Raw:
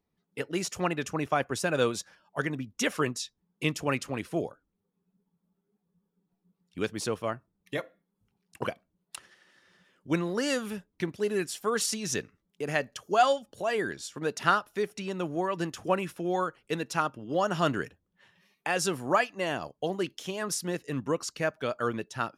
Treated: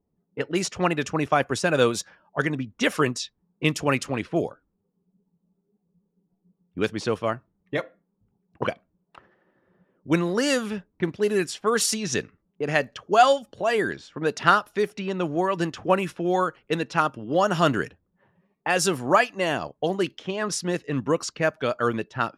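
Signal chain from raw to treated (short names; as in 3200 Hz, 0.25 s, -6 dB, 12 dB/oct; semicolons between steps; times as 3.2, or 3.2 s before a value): low-pass opened by the level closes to 670 Hz, open at -25.5 dBFS; gain +6 dB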